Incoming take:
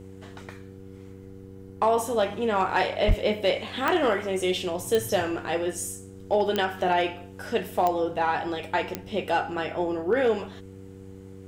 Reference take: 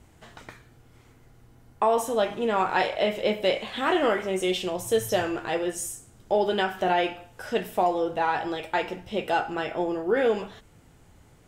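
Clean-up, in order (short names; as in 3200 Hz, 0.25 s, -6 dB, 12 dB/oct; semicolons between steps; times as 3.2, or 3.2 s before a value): clip repair -14 dBFS; de-click; de-hum 95.9 Hz, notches 5; 3.07–3.19 HPF 140 Hz 24 dB/oct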